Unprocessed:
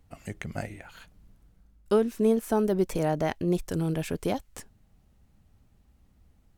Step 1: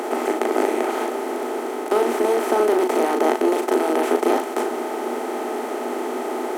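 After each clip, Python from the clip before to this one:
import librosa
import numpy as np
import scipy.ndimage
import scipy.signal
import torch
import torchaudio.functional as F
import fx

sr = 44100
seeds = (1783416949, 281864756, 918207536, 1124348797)

y = fx.bin_compress(x, sr, power=0.2)
y = scipy.signal.sosfilt(scipy.signal.cheby1(6, 6, 240.0, 'highpass', fs=sr, output='sos'), y)
y = fx.doubler(y, sr, ms=38.0, db=-5.0)
y = F.gain(torch.from_numpy(y), 4.0).numpy()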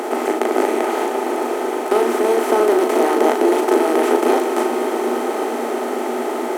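y = fx.echo_swell(x, sr, ms=116, loudest=5, wet_db=-14.5)
y = F.gain(torch.from_numpy(y), 2.5).numpy()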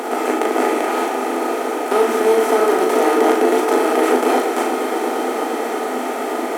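y = fx.low_shelf(x, sr, hz=300.0, db=-5.0)
y = fx.room_shoebox(y, sr, seeds[0], volume_m3=440.0, walls='furnished', distance_m=1.8)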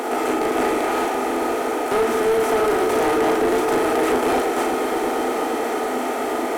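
y = 10.0 ** (-14.0 / 20.0) * np.tanh(x / 10.0 ** (-14.0 / 20.0))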